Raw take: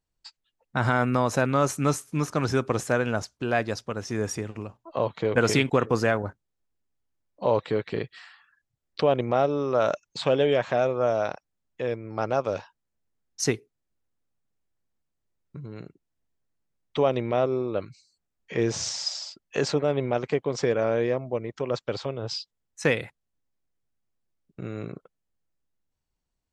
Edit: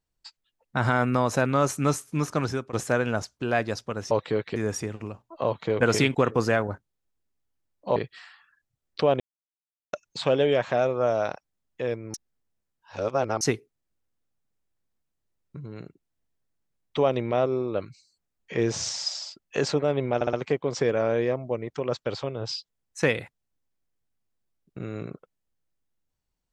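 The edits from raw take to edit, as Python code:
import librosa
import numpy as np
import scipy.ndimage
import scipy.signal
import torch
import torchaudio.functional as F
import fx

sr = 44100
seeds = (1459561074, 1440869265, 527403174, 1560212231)

y = fx.edit(x, sr, fx.fade_out_to(start_s=2.38, length_s=0.35, floor_db=-18.0),
    fx.move(start_s=7.51, length_s=0.45, to_s=4.11),
    fx.silence(start_s=9.2, length_s=0.73),
    fx.reverse_span(start_s=12.14, length_s=1.27),
    fx.stutter(start_s=20.15, slice_s=0.06, count=4), tone=tone)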